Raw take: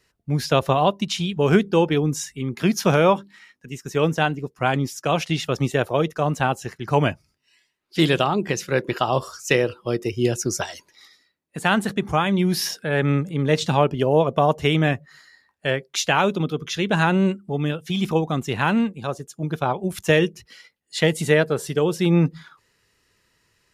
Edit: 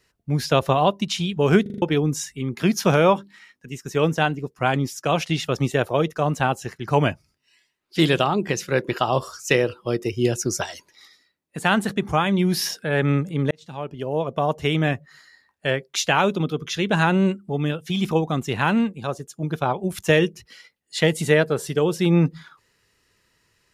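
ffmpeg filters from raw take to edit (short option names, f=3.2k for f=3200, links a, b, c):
-filter_complex "[0:a]asplit=7[a][b][c][d][e][f][g];[a]atrim=end=1.662[h];[b]atrim=start=1.618:end=1.662[i];[c]atrim=start=1.618:end=1.662[j];[d]atrim=start=1.618:end=1.662[k];[e]atrim=start=1.618:end=1.662[l];[f]atrim=start=1.818:end=13.51,asetpts=PTS-STARTPTS,afade=t=out:st=11.688:d=0.004:c=hsin[m];[g]atrim=start=13.51,asetpts=PTS-STARTPTS,afade=t=in:d=2.15:c=qsin[n];[h][i]acrossfade=d=0.004:c1=hsin:c2=hsin[o];[o][j]acrossfade=d=0.004:c1=hsin:c2=hsin[p];[p][k]acrossfade=d=0.004:c1=hsin:c2=hsin[q];[q][l]acrossfade=d=0.004:c1=hsin:c2=hsin[r];[m][n]concat=n=2:v=0:a=1[s];[r][s]acrossfade=d=0.004:c1=hsin:c2=hsin"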